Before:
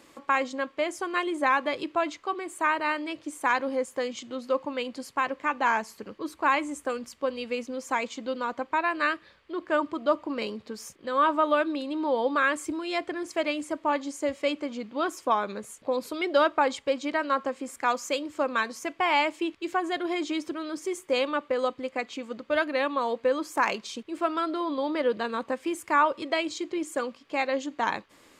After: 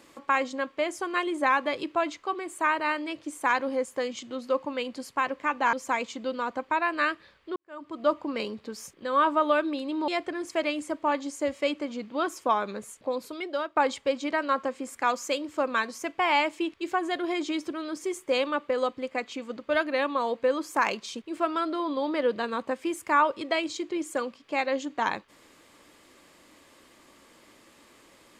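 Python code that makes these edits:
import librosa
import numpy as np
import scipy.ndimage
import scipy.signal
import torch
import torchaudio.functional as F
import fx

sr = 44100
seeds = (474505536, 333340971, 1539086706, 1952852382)

y = fx.edit(x, sr, fx.cut(start_s=5.73, length_s=2.02),
    fx.fade_in_span(start_s=9.58, length_s=0.5, curve='qua'),
    fx.cut(start_s=12.1, length_s=0.79),
    fx.fade_out_to(start_s=15.67, length_s=0.9, floor_db=-13.5), tone=tone)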